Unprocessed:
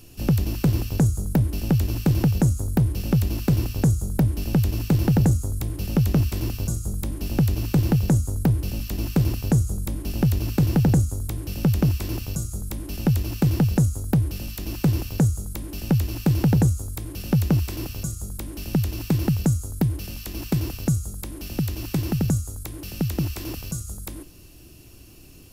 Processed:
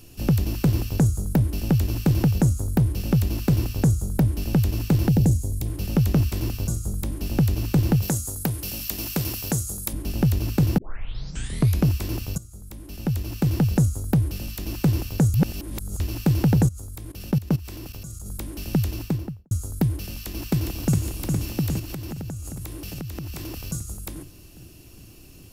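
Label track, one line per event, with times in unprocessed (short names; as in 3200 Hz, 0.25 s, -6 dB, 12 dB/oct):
5.080000	5.660000	bell 1300 Hz -13 dB 1.1 oct
8.020000	9.930000	tilt +2.5 dB/oct
10.780000	10.780000	tape start 1.07 s
12.380000	13.770000	fade in, from -16 dB
15.340000	16.000000	reverse
16.660000	18.260000	level quantiser steps of 18 dB
18.880000	19.510000	studio fade out
20.240000	21.040000	echo throw 0.41 s, feedback 70%, level -4 dB
21.790000	23.660000	compressor 10:1, threshold -29 dBFS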